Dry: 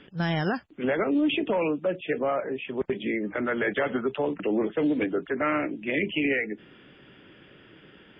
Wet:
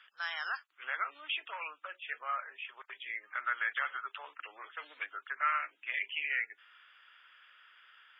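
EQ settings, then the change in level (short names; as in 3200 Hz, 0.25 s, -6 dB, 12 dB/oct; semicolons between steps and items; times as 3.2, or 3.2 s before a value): ladder high-pass 1100 Hz, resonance 55%; high shelf 3400 Hz +8.5 dB; 0.0 dB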